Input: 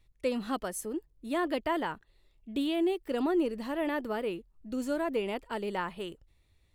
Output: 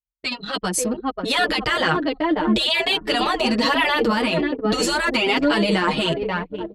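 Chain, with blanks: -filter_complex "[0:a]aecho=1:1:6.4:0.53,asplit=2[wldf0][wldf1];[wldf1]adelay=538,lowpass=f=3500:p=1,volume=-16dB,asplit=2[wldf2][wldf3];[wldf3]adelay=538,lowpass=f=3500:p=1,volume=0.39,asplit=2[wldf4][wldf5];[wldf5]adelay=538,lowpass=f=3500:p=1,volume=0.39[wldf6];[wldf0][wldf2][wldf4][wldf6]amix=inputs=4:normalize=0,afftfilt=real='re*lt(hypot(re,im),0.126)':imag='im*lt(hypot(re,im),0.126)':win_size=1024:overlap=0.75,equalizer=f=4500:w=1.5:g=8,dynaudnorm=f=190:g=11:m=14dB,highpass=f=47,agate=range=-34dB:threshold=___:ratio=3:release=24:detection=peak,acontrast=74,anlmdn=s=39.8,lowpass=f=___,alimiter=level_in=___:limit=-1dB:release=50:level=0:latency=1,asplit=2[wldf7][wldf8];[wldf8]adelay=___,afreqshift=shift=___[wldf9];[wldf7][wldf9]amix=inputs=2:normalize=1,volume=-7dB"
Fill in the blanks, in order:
-51dB, 8300, 14.5dB, 6.2, 1.2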